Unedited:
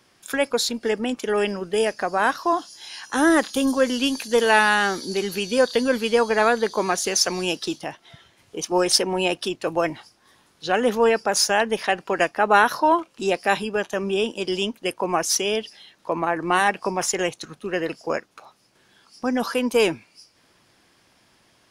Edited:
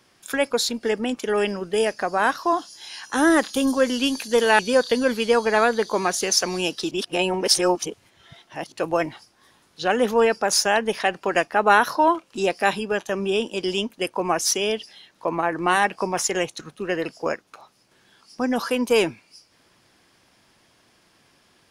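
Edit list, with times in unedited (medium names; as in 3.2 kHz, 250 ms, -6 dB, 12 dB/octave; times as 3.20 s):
4.59–5.43 s: delete
7.75–9.56 s: reverse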